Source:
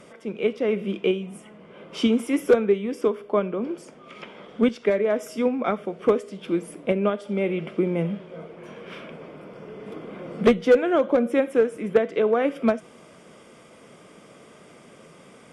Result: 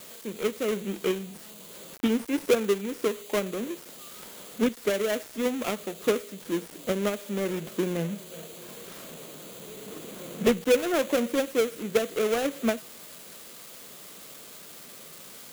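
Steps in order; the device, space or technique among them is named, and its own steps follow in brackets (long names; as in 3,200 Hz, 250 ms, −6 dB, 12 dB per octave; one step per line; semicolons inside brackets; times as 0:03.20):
budget class-D amplifier (gap after every zero crossing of 0.27 ms; spike at every zero crossing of −23 dBFS)
level −4.5 dB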